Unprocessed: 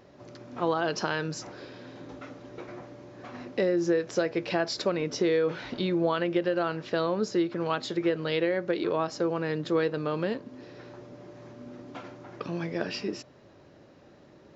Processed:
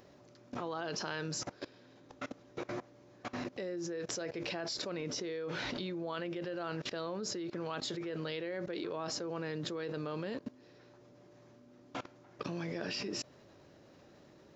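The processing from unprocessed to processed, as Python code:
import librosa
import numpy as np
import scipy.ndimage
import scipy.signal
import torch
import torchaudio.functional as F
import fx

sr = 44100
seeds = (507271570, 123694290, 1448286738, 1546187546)

y = fx.high_shelf(x, sr, hz=5300.0, db=9.5)
y = fx.level_steps(y, sr, step_db=21)
y = y * librosa.db_to_amplitude(3.5)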